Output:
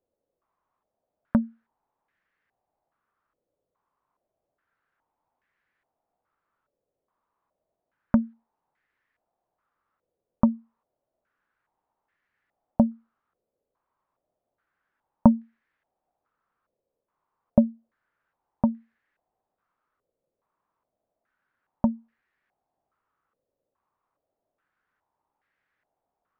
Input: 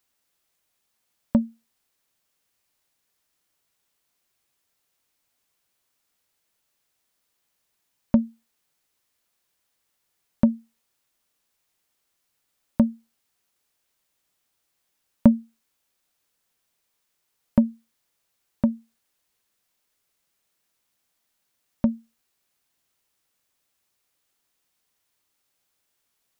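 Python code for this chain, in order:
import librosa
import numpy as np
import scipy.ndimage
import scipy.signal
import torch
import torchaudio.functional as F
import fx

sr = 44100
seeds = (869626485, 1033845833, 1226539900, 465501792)

y = fx.dynamic_eq(x, sr, hz=480.0, q=1.5, threshold_db=-38.0, ratio=4.0, max_db=-6)
y = fx.filter_held_lowpass(y, sr, hz=2.4, low_hz=530.0, high_hz=1800.0)
y = y * librosa.db_to_amplitude(-1.0)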